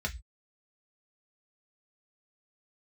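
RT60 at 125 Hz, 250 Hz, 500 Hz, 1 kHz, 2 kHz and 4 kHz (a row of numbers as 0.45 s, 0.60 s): 0.40 s, 0.20 s, 0.10 s, 0.15 s, 0.20 s, 0.25 s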